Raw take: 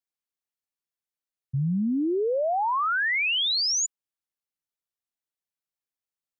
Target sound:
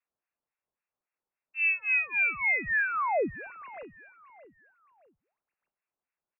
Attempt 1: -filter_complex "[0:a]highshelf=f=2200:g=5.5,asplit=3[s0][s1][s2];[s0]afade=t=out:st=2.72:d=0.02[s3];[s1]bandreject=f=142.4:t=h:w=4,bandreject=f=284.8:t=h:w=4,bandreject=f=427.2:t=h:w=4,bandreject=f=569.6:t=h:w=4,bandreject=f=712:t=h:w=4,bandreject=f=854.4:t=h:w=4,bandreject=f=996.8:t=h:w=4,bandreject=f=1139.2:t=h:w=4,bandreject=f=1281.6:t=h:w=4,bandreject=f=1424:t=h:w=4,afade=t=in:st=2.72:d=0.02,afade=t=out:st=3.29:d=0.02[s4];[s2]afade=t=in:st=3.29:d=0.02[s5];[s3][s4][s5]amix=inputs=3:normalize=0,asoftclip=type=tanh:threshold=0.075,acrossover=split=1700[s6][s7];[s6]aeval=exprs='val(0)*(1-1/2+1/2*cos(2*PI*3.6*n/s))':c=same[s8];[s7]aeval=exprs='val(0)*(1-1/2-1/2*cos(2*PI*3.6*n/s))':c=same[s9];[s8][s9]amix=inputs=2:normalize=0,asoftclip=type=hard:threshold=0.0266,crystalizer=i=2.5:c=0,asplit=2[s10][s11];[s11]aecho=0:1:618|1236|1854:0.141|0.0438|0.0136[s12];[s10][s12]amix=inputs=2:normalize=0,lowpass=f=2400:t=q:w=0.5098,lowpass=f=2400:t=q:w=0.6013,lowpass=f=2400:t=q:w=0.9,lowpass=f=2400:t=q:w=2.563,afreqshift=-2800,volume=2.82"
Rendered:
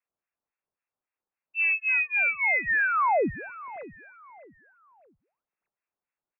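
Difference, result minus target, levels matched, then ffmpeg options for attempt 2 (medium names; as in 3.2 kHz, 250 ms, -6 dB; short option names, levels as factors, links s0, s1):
saturation: distortion -7 dB
-filter_complex "[0:a]highshelf=f=2200:g=5.5,asplit=3[s0][s1][s2];[s0]afade=t=out:st=2.72:d=0.02[s3];[s1]bandreject=f=142.4:t=h:w=4,bandreject=f=284.8:t=h:w=4,bandreject=f=427.2:t=h:w=4,bandreject=f=569.6:t=h:w=4,bandreject=f=712:t=h:w=4,bandreject=f=854.4:t=h:w=4,bandreject=f=996.8:t=h:w=4,bandreject=f=1139.2:t=h:w=4,bandreject=f=1281.6:t=h:w=4,bandreject=f=1424:t=h:w=4,afade=t=in:st=2.72:d=0.02,afade=t=out:st=3.29:d=0.02[s4];[s2]afade=t=in:st=3.29:d=0.02[s5];[s3][s4][s5]amix=inputs=3:normalize=0,asoftclip=type=tanh:threshold=0.0266,acrossover=split=1700[s6][s7];[s6]aeval=exprs='val(0)*(1-1/2+1/2*cos(2*PI*3.6*n/s))':c=same[s8];[s7]aeval=exprs='val(0)*(1-1/2-1/2*cos(2*PI*3.6*n/s))':c=same[s9];[s8][s9]amix=inputs=2:normalize=0,asoftclip=type=hard:threshold=0.0266,crystalizer=i=2.5:c=0,asplit=2[s10][s11];[s11]aecho=0:1:618|1236|1854:0.141|0.0438|0.0136[s12];[s10][s12]amix=inputs=2:normalize=0,lowpass=f=2400:t=q:w=0.5098,lowpass=f=2400:t=q:w=0.6013,lowpass=f=2400:t=q:w=0.9,lowpass=f=2400:t=q:w=2.563,afreqshift=-2800,volume=2.82"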